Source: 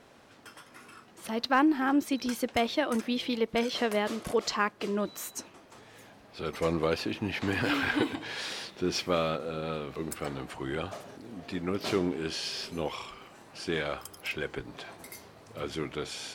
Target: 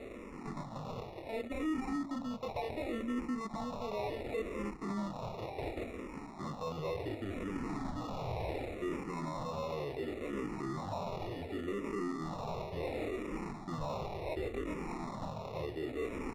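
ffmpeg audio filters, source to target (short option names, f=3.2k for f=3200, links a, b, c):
-filter_complex "[0:a]asoftclip=type=tanh:threshold=-24.5dB,flanger=delay=20:depth=5.2:speed=0.29,acrossover=split=2600[a][b];[b]adelay=410[c];[a][c]amix=inputs=2:normalize=0,areverse,acompressor=threshold=-46dB:ratio=6,areverse,acrusher=samples=28:mix=1:aa=0.000001,aemphasis=mode=reproduction:type=75fm,bandreject=f=46.34:t=h:w=4,bandreject=f=92.68:t=h:w=4,bandreject=f=139.02:t=h:w=4,bandreject=f=185.36:t=h:w=4,bandreject=f=231.7:t=h:w=4,bandreject=f=278.04:t=h:w=4,alimiter=level_in=21dB:limit=-24dB:level=0:latency=1:release=32,volume=-21dB,asplit=2[d][e];[e]afreqshift=-0.69[f];[d][f]amix=inputs=2:normalize=1,volume=16.5dB"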